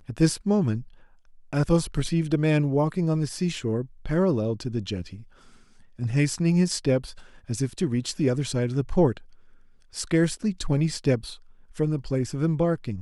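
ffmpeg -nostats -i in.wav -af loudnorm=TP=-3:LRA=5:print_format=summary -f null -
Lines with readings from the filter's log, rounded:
Input Integrated:    -25.5 LUFS
Input True Peak:      -8.5 dBTP
Input LRA:             2.2 LU
Input Threshold:     -36.3 LUFS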